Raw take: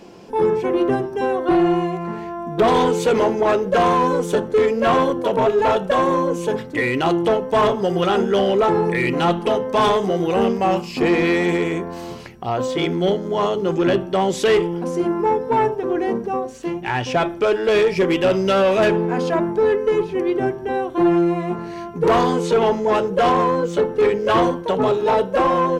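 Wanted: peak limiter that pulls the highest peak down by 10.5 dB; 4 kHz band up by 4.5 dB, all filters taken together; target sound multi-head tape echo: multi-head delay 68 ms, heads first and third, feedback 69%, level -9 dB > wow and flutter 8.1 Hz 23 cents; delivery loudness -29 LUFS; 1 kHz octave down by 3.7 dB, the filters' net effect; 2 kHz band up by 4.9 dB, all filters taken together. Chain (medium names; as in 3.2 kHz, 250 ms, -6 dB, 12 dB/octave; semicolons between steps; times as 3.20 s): peaking EQ 1 kHz -6.5 dB; peaking EQ 2 kHz +7 dB; peaking EQ 4 kHz +3.5 dB; peak limiter -17 dBFS; multi-head delay 68 ms, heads first and third, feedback 69%, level -9 dB; wow and flutter 8.1 Hz 23 cents; trim -6 dB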